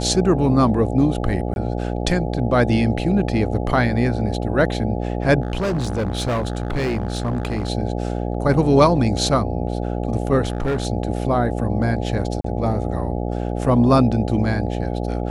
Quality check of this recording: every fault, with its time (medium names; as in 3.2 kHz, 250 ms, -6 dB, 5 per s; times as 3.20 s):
buzz 60 Hz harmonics 14 -24 dBFS
1.54–1.56 s: dropout 21 ms
5.41–7.70 s: clipped -18 dBFS
10.43–10.87 s: clipped -17 dBFS
12.41–12.44 s: dropout 34 ms